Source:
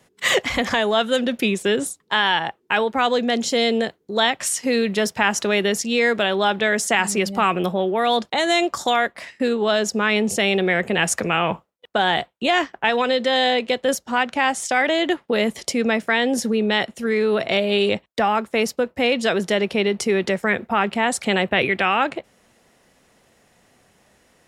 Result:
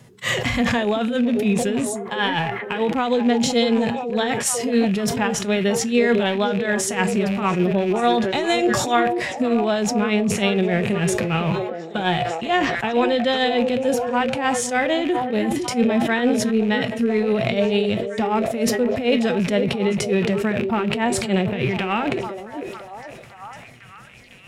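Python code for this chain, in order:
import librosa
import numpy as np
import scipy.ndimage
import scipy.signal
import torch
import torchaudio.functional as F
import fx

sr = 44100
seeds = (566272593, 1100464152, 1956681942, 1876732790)

p1 = fx.rattle_buzz(x, sr, strikes_db=-39.0, level_db=-21.0)
p2 = fx.low_shelf(p1, sr, hz=75.0, db=7.0)
p3 = fx.hpss(p2, sr, part='percussive', gain_db=-12)
p4 = fx.peak_eq(p3, sr, hz=130.0, db=11.5, octaves=1.2)
p5 = fx.over_compress(p4, sr, threshold_db=-29.0, ratio=-1.0)
p6 = p4 + (p5 * 10.0 ** (-1.0 / 20.0))
p7 = p6 * (1.0 - 0.73 / 2.0 + 0.73 / 2.0 * np.cos(2.0 * np.pi * 6.7 * (np.arange(len(p6)) / sr)))
p8 = fx.comb_fb(p7, sr, f0_hz=120.0, decay_s=0.18, harmonics='all', damping=0.0, mix_pct=50)
p9 = fx.echo_stepped(p8, sr, ms=504, hz=370.0, octaves=0.7, feedback_pct=70, wet_db=-6.0)
p10 = fx.sustainer(p9, sr, db_per_s=40.0)
y = p10 * 10.0 ** (2.5 / 20.0)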